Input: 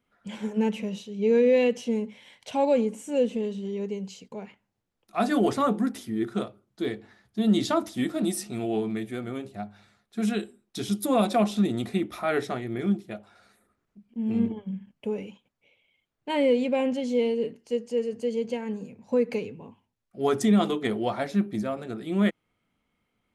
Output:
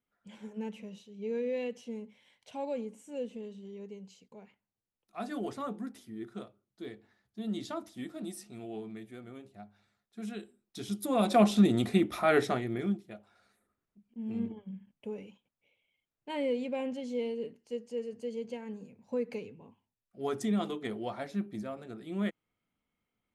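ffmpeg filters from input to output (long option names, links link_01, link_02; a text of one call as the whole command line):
ffmpeg -i in.wav -af "volume=1dB,afade=type=in:start_time=10.29:duration=0.86:silence=0.446684,afade=type=in:start_time=11.15:duration=0.3:silence=0.421697,afade=type=out:start_time=12.48:duration=0.52:silence=0.298538" out.wav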